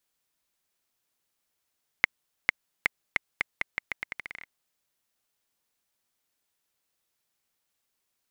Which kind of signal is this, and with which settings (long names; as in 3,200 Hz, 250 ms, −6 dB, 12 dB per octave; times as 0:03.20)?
bouncing ball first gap 0.45 s, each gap 0.82, 2,100 Hz, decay 12 ms −3 dBFS